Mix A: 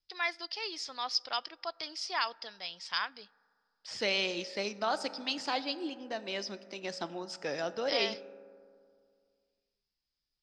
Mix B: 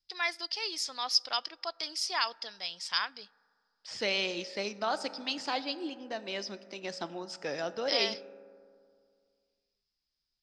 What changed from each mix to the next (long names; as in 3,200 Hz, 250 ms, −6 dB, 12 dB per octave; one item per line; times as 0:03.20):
first voice: remove high-frequency loss of the air 110 metres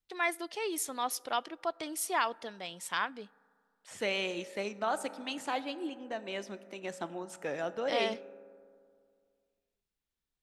first voice: add parametric band 250 Hz +12 dB 2.7 octaves
master: remove low-pass with resonance 5,000 Hz, resonance Q 13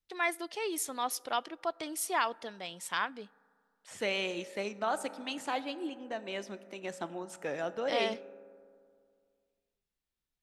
nothing changed